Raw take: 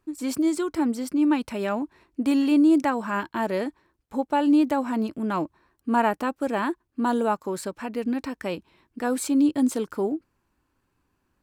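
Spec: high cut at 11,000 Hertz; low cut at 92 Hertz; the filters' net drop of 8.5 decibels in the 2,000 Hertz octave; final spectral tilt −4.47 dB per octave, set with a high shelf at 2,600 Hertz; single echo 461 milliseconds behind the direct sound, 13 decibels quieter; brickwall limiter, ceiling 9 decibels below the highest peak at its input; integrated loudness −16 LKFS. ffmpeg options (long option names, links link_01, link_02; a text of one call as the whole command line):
ffmpeg -i in.wav -af "highpass=92,lowpass=11000,equalizer=frequency=2000:width_type=o:gain=-8.5,highshelf=frequency=2600:gain=-8,alimiter=limit=-21dB:level=0:latency=1,aecho=1:1:461:0.224,volume=13.5dB" out.wav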